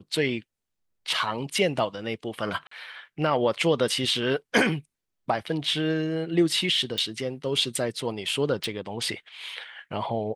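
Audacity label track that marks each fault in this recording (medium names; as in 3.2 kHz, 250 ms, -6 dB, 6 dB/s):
2.670000	2.710000	dropout 44 ms
6.980000	6.980000	pop
8.640000	8.640000	pop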